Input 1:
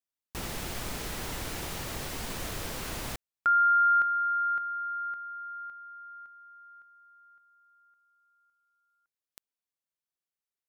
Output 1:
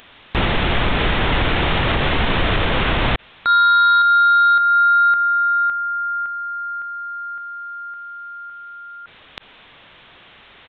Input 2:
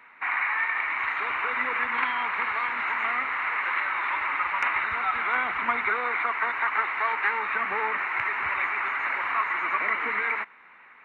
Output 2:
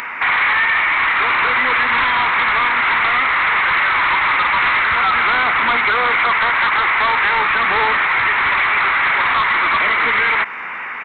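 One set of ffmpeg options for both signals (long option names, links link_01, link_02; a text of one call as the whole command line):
ffmpeg -i in.wav -af "aresample=8000,asoftclip=type=tanh:threshold=-27.5dB,aresample=44100,acompressor=threshold=-34dB:ratio=6:attack=1.8:release=812:knee=1:detection=peak,equalizer=frequency=310:width_type=o:width=2.9:gain=-2.5,acompressor=mode=upward:threshold=-47dB:ratio=2.5:attack=1.6:release=22:knee=2.83:detection=peak,alimiter=level_in=32dB:limit=-1dB:release=50:level=0:latency=1,volume=-8dB" out.wav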